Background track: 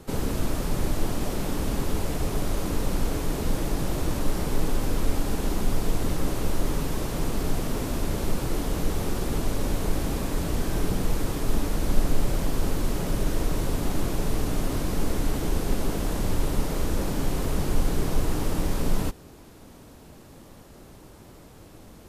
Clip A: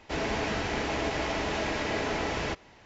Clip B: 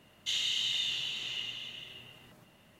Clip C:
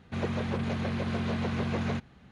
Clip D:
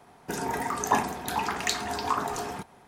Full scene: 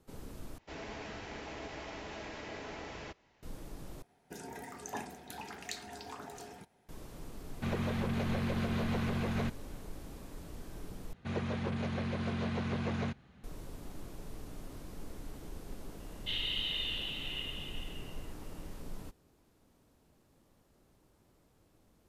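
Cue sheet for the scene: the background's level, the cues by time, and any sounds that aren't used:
background track −20 dB
0:00.58: overwrite with A −14 dB
0:04.02: overwrite with D −13.5 dB + parametric band 1,100 Hz −11 dB 0.52 octaves
0:07.50: mix in C −1.5 dB + brickwall limiter −23.5 dBFS
0:11.13: overwrite with C −4.5 dB
0:16.00: mix in B −1.5 dB + low-pass filter 3,400 Hz 24 dB per octave

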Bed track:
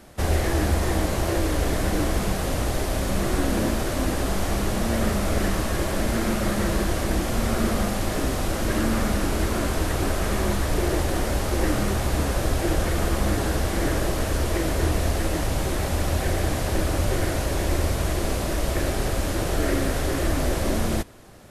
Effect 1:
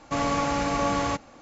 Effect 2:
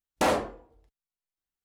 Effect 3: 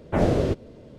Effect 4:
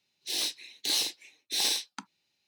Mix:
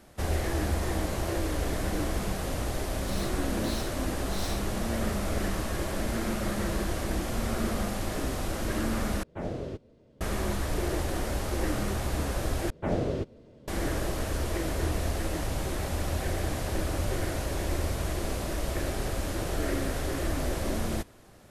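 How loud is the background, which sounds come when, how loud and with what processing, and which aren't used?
bed track −6.5 dB
0:02.79: mix in 4 −13.5 dB
0:09.23: overwrite with 3 −13.5 dB
0:12.70: overwrite with 3 −7.5 dB
not used: 1, 2

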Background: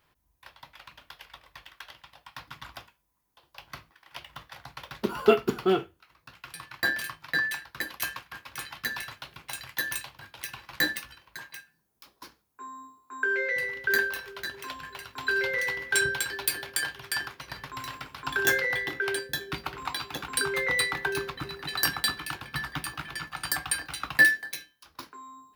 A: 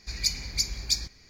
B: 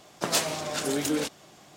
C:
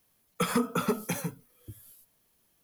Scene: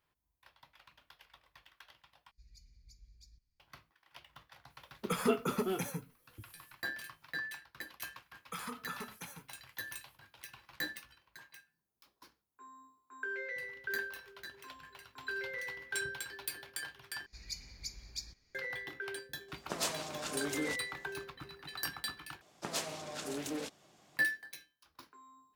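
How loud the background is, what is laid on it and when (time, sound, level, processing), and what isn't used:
background −12.5 dB
0:02.31: overwrite with A −16 dB + guitar amp tone stack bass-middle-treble 10-0-1
0:04.70: mix in C −6.5 dB
0:08.12: mix in C −13 dB + low shelf with overshoot 710 Hz −6.5 dB, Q 1.5
0:17.26: overwrite with A −16.5 dB
0:19.48: mix in B −10 dB
0:22.41: overwrite with B −11.5 dB + highs frequency-modulated by the lows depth 0.29 ms

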